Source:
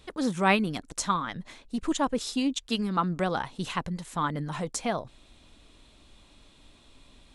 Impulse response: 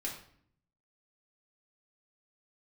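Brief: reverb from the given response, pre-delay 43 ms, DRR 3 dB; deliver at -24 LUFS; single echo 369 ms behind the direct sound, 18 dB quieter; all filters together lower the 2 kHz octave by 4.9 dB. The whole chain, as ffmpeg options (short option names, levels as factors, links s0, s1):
-filter_complex "[0:a]equalizer=f=2000:t=o:g=-6.5,aecho=1:1:369:0.126,asplit=2[s0][s1];[1:a]atrim=start_sample=2205,adelay=43[s2];[s1][s2]afir=irnorm=-1:irlink=0,volume=0.631[s3];[s0][s3]amix=inputs=2:normalize=0,volume=1.58"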